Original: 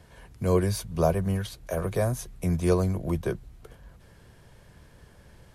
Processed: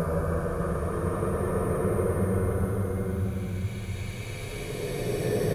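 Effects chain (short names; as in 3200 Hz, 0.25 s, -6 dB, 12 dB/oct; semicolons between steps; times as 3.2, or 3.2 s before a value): downsampling 32000 Hz; crackle 260/s -48 dBFS; Paulstretch 34×, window 0.10 s, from 1.8; gain +2 dB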